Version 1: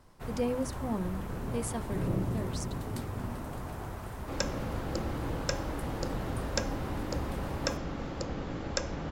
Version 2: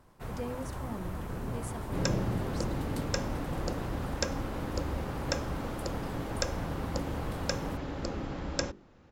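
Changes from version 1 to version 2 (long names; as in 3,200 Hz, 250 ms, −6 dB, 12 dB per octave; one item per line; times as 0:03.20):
speech −7.5 dB
second sound: entry −2.35 s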